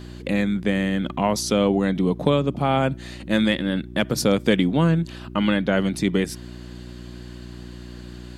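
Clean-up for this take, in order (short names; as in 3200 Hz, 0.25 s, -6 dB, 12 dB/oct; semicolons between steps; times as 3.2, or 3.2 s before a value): de-hum 60.2 Hz, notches 6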